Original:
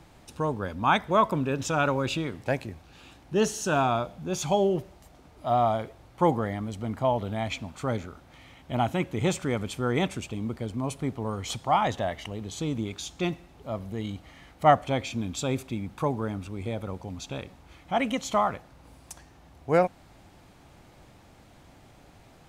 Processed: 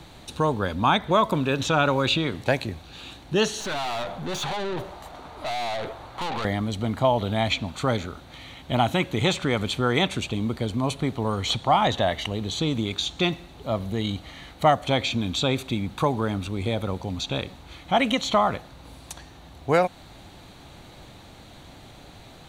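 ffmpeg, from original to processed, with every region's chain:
-filter_complex "[0:a]asettb=1/sr,asplit=3[s0][s1][s2];[s0]atrim=end=3.604[s3];[s1]atrim=start=3.6:end=6.45,asetpts=PTS-STARTPTS,afade=t=in:d=0.004:c=qsin,afade=t=out:st=2.846:d=0.004:c=qsin,equalizer=f=1000:w=0.64:g=13,acompressor=threshold=0.0891:ratio=5:attack=3.2:release=140:knee=1:detection=peak,aeval=exprs='(tanh(56.2*val(0)+0.35)-tanh(0.35))/56.2':c=same[s4];[s2]atrim=start=6.446[s5];[s3][s4]acrossfade=d=0.004:c1=hsin:c2=qsin[s6];[s6][s5]acrossfade=d=0.004:c1=qsin:c2=hsin,equalizer=f=3900:t=o:w=0.56:g=9.5,bandreject=f=5100:w=8.4,acrossover=split=650|4500[s7][s8][s9];[s7]acompressor=threshold=0.0355:ratio=4[s10];[s8]acompressor=threshold=0.0447:ratio=4[s11];[s9]acompressor=threshold=0.00501:ratio=4[s12];[s10][s11][s12]amix=inputs=3:normalize=0,volume=2.24"

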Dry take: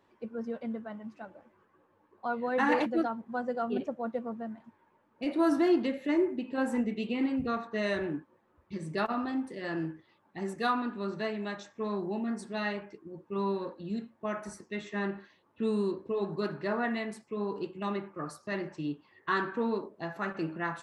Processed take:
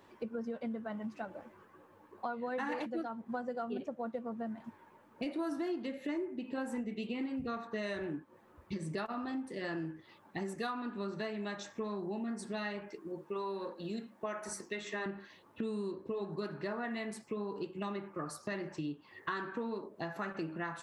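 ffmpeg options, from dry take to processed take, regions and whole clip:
-filter_complex "[0:a]asettb=1/sr,asplit=3[s0][s1][s2];[s0]atrim=end=12.884[s3];[s1]atrim=start=12.88:end=15.06,asetpts=PTS-STARTPTS,afade=t=in:d=0.004:c=qsin,afade=t=out:st=2.176:d=0.004:c=qsin,bass=f=250:g=-9,treble=f=4000:g=1,bandreject=f=50:t=h:w=6,bandreject=f=100:t=h:w=6,bandreject=f=150:t=h:w=6,bandreject=f=200:t=h:w=6,bandreject=f=250:t=h:w=6,bandreject=f=300:t=h:w=6,bandreject=f=350:t=h:w=6[s4];[s2]atrim=start=15.056[s5];[s3][s4]acrossfade=d=0.004:c1=hsin:c2=qsin[s6];[s6][s5]acrossfade=d=0.004:c1=qsin:c2=hsin,highshelf=f=5700:g=4.5,acompressor=threshold=0.00631:ratio=5,volume=2.24"

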